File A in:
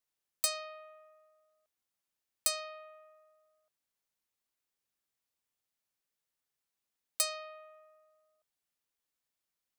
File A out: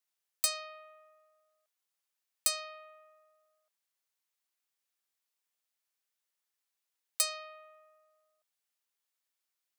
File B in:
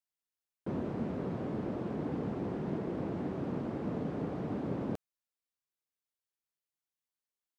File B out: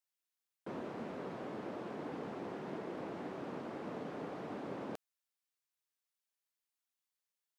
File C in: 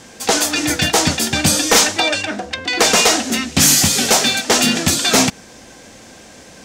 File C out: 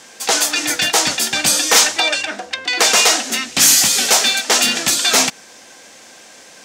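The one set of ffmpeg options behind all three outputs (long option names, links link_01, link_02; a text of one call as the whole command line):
ffmpeg -i in.wav -af "highpass=frequency=820:poles=1,volume=1.5dB" out.wav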